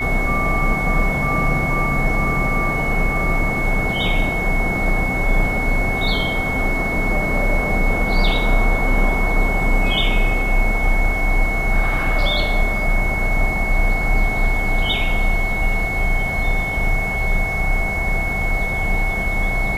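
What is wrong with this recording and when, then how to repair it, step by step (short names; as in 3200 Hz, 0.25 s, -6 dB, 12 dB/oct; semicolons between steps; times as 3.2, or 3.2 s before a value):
tone 2200 Hz -22 dBFS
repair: notch 2200 Hz, Q 30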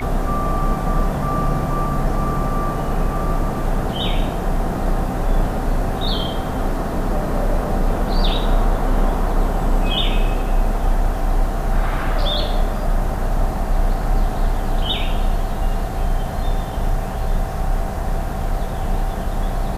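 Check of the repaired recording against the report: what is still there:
none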